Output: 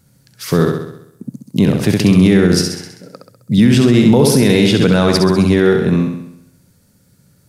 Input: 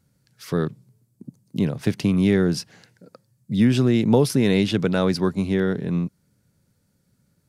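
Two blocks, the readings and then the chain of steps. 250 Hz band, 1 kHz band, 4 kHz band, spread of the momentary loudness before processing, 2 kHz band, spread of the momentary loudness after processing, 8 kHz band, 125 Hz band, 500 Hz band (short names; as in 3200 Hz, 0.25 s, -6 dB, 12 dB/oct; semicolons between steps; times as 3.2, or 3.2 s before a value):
+9.0 dB, +9.5 dB, +11.5 dB, 10 LU, +10.0 dB, 13 LU, +13.5 dB, +9.0 dB, +9.0 dB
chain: high shelf 5500 Hz +4.5 dB; flutter echo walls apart 11.3 m, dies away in 0.76 s; maximiser +11.5 dB; gain -1 dB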